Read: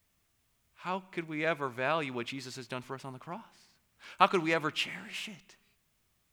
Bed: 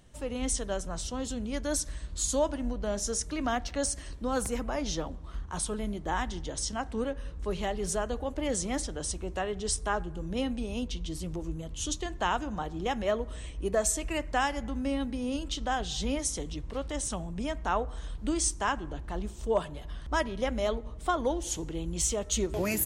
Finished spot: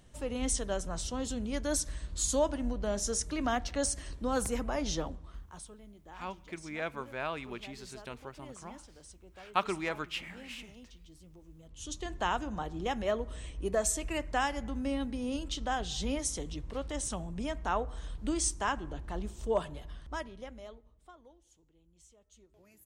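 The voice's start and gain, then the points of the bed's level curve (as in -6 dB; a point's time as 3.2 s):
5.35 s, -5.5 dB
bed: 5.08 s -1 dB
5.79 s -19.5 dB
11.49 s -19.5 dB
12.1 s -2.5 dB
19.76 s -2.5 dB
21.46 s -32.5 dB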